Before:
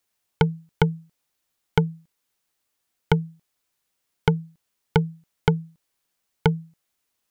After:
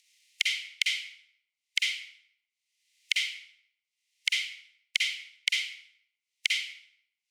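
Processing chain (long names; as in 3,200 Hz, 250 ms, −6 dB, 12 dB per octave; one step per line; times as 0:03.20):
compressing power law on the bin magnitudes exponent 0.57
transient designer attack +7 dB, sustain −10 dB
noise gate with hold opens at −43 dBFS
Chebyshev high-pass filter 2,000 Hz, order 6
upward compression, threshold −24 dBFS
high-frequency loss of the air 71 metres
convolution reverb RT60 0.70 s, pre-delay 44 ms, DRR −3 dB
level −6.5 dB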